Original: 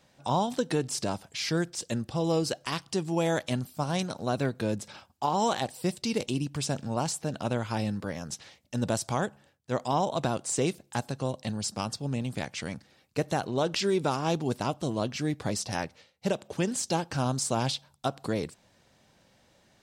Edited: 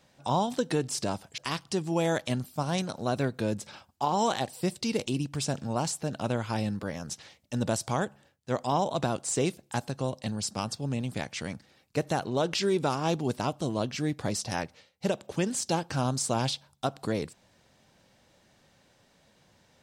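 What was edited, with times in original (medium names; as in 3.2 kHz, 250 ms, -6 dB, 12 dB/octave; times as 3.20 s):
1.38–2.59 s: delete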